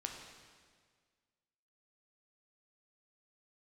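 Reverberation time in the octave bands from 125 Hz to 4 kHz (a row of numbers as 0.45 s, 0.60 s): 1.9 s, 1.8 s, 1.8 s, 1.7 s, 1.7 s, 1.6 s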